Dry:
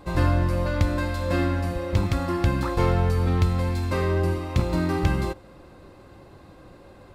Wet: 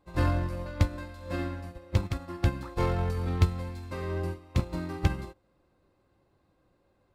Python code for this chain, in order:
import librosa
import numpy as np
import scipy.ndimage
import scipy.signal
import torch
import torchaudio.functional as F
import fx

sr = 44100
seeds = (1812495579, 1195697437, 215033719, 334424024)

y = fx.upward_expand(x, sr, threshold_db=-30.0, expansion=2.5)